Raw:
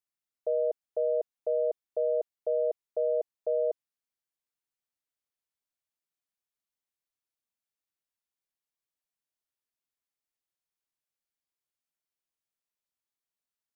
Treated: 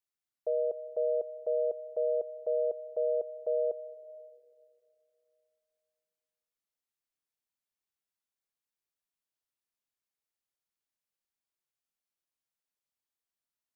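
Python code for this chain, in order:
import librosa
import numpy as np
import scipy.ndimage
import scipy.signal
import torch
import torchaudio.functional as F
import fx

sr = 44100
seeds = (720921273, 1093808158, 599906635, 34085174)

y = fx.rev_freeverb(x, sr, rt60_s=2.6, hf_ratio=0.5, predelay_ms=110, drr_db=17.5)
y = F.gain(torch.from_numpy(y), -2.0).numpy()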